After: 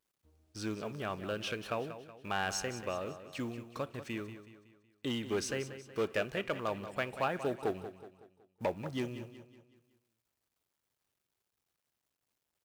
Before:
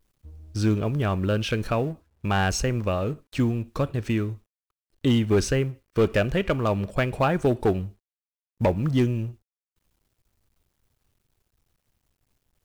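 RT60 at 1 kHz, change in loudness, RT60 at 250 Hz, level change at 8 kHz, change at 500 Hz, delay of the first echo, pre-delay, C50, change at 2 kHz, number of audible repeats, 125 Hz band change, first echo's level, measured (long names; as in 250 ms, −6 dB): no reverb audible, −12.5 dB, no reverb audible, −7.5 dB, −11.0 dB, 186 ms, no reverb audible, no reverb audible, −8.0 dB, 4, −20.0 dB, −12.0 dB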